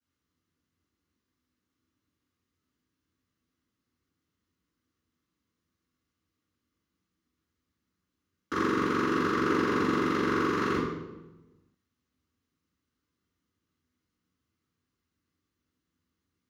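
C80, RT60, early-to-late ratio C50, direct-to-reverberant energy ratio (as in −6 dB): 2.5 dB, 1.1 s, 0.5 dB, −14.0 dB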